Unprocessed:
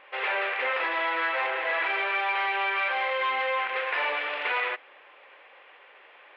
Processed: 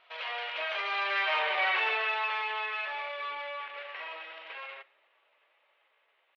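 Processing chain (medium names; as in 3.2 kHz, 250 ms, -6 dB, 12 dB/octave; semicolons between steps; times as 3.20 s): Doppler pass-by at 1.58 s, 19 m/s, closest 10 m; pitch shift +2.5 st; Schroeder reverb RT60 0.56 s, combs from 26 ms, DRR 19.5 dB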